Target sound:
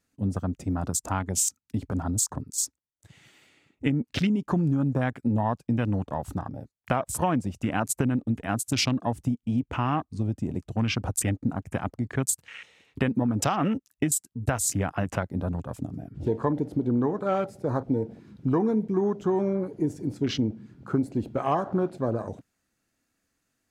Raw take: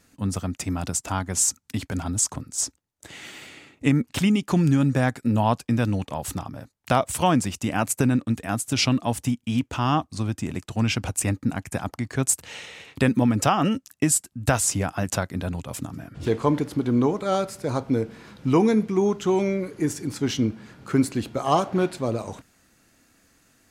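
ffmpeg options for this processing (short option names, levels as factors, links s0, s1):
-af "acompressor=threshold=0.0891:ratio=4,afwtdn=0.0158"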